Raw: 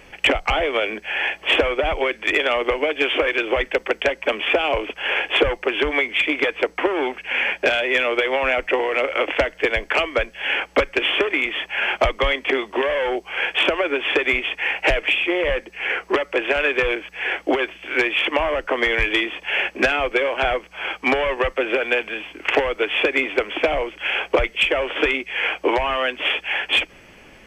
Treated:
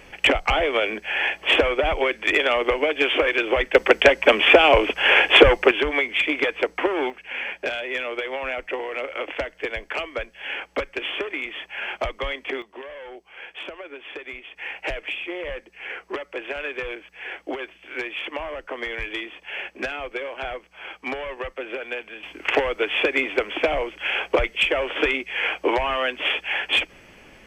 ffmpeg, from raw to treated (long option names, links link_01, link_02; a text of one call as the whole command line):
ffmpeg -i in.wav -af "asetnsamples=nb_out_samples=441:pad=0,asendcmd='3.75 volume volume 6dB;5.71 volume volume -2dB;7.1 volume volume -8.5dB;12.62 volume volume -17dB;14.56 volume volume -10.5dB;22.23 volume volume -2dB',volume=-0.5dB" out.wav